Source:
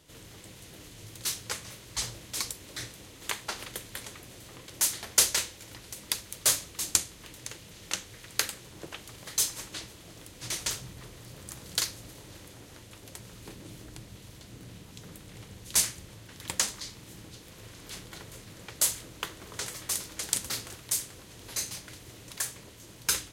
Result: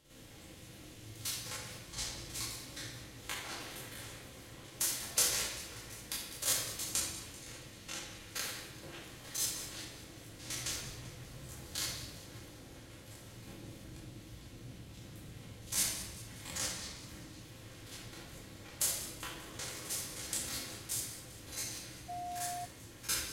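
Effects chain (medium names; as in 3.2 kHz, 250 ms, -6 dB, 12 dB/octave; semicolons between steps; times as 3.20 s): spectrogram pixelated in time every 50 ms; two-band feedback delay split 2.4 kHz, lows 539 ms, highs 195 ms, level -15 dB; simulated room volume 970 m³, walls mixed, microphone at 2.2 m; 22.08–22.64 s: whistle 710 Hz -31 dBFS; trim -7.5 dB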